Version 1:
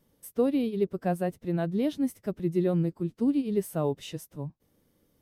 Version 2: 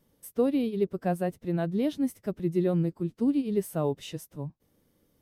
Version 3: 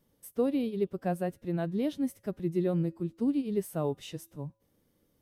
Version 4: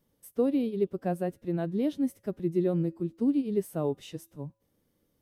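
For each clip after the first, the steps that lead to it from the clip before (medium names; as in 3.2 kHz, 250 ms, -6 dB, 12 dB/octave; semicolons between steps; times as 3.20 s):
no audible change
feedback comb 110 Hz, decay 0.69 s, harmonics odd, mix 30%
dynamic bell 330 Hz, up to +5 dB, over -42 dBFS, Q 0.77; trim -2 dB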